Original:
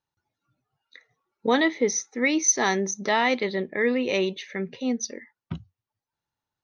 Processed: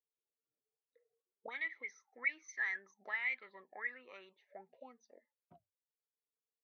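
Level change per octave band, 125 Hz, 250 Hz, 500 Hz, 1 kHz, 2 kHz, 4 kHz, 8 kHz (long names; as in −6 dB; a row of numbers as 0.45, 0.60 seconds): below −35 dB, −39.0 dB, −30.5 dB, −25.0 dB, −10.5 dB, −26.5 dB, −35.0 dB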